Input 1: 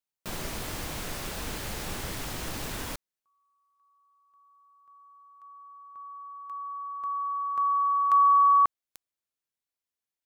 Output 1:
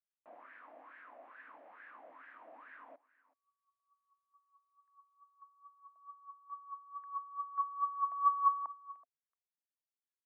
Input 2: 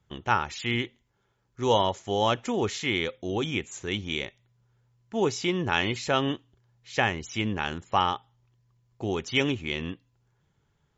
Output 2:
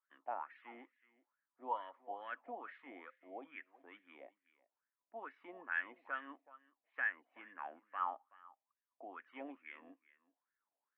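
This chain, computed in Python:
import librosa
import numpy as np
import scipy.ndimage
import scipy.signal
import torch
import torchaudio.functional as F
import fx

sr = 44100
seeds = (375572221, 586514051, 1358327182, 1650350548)

y = fx.cabinet(x, sr, low_hz=270.0, low_slope=24, high_hz=2300.0, hz=(270.0, 400.0, 830.0, 1400.0), db=(9, -10, -7, -5))
y = y + 10.0 ** (-20.0 / 20.0) * np.pad(y, (int(376 * sr / 1000.0), 0))[:len(y)]
y = fx.wah_lfo(y, sr, hz=2.3, low_hz=670.0, high_hz=1700.0, q=7.4)
y = F.gain(torch.from_numpy(y), -1.0).numpy()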